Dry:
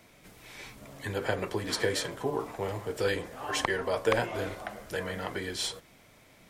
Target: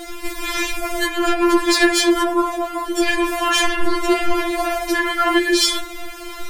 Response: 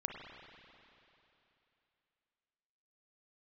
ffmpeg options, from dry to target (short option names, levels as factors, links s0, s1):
-filter_complex "[0:a]asettb=1/sr,asplit=3[s0][s1][s2];[s0]atrim=end=2.334[s3];[s1]atrim=start=2.33:end=3.11,asetpts=PTS-STARTPTS,afade=t=in:d=0.004:c=qsin,afade=t=out:st=0.776:d=0.004:c=qsin,agate=range=0.398:threshold=0.0355:ratio=16:detection=peak[s4];[s2]atrim=start=3.106[s5];[s3][s4]acrossfade=d=0.004:c1=hsin:c2=qsin[s6];[s6][s5]acrossfade=d=0.004:c1=qsin:c2=hsin,lowshelf=f=180:g=12,asplit=3[s7][s8][s9];[s7]afade=t=out:st=3.67:d=0.02[s10];[s8]afreqshift=-180,afade=t=in:st=3.67:d=0.02,afade=t=out:st=4.38:d=0.02[s11];[s9]afade=t=in:st=4.38:d=0.02[s12];[s10][s11][s12]amix=inputs=3:normalize=0,asoftclip=type=tanh:threshold=0.0531[s13];[1:a]atrim=start_sample=2205,atrim=end_sample=3528[s14];[s13][s14]afir=irnorm=-1:irlink=0,alimiter=level_in=42.2:limit=0.891:release=50:level=0:latency=1,afftfilt=real='re*4*eq(mod(b,16),0)':imag='im*4*eq(mod(b,16),0)':win_size=2048:overlap=0.75,volume=0.596"